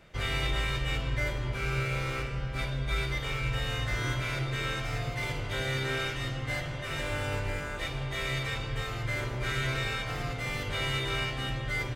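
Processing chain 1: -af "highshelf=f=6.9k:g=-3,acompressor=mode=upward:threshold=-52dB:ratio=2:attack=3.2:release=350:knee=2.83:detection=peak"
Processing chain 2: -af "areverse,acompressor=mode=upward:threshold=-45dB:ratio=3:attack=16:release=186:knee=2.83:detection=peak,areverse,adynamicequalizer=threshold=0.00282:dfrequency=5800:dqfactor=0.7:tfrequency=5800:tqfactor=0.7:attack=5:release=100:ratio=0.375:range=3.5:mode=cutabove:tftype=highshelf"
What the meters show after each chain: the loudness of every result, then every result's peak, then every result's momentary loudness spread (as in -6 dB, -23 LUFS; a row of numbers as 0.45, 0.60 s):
-32.0, -32.0 LUFS; -17.5, -17.5 dBFS; 4, 4 LU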